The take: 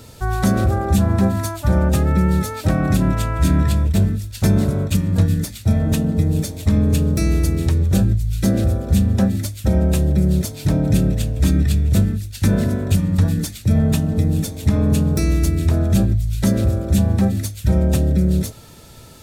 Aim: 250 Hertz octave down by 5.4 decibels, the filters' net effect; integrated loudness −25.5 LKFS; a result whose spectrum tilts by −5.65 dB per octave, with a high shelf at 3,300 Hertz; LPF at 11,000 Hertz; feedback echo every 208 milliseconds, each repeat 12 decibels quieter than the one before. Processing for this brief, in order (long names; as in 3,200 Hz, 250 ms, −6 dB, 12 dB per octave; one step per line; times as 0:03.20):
low-pass filter 11,000 Hz
parametric band 250 Hz −8.5 dB
high-shelf EQ 3,300 Hz +5.5 dB
repeating echo 208 ms, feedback 25%, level −12 dB
level −5.5 dB